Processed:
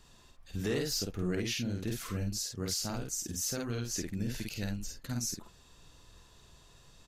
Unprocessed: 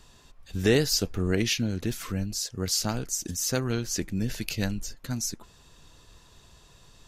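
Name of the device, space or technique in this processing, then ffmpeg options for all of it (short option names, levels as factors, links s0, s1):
soft clipper into limiter: -filter_complex "[0:a]asplit=2[s0][s1];[s1]adelay=50,volume=0.708[s2];[s0][s2]amix=inputs=2:normalize=0,asoftclip=type=tanh:threshold=0.266,alimiter=limit=0.119:level=0:latency=1:release=313,volume=0.531"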